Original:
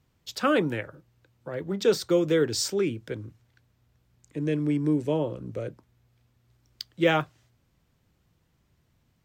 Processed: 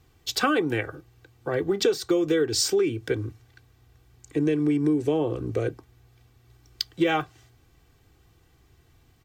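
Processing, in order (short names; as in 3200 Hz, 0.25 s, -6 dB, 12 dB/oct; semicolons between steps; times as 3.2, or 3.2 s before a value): comb 2.6 ms, depth 63%; compressor 6:1, threshold -28 dBFS, peak gain reduction 14.5 dB; gain +8 dB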